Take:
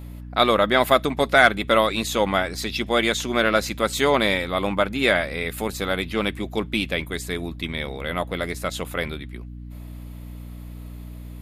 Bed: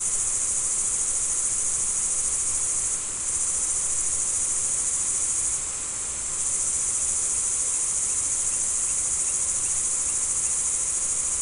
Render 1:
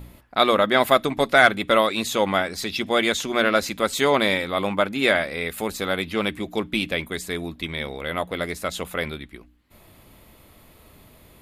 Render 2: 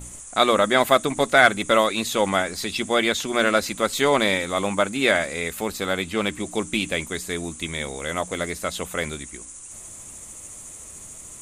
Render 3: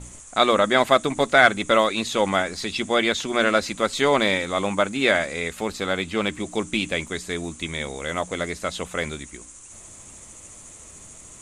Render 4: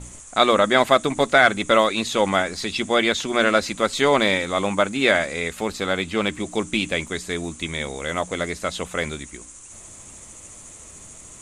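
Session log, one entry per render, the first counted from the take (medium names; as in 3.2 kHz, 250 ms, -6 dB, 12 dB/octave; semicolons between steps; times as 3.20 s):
de-hum 60 Hz, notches 5
add bed -15.5 dB
low-pass 7.3 kHz 12 dB/octave
trim +1.5 dB; peak limiter -3 dBFS, peak gain reduction 2.5 dB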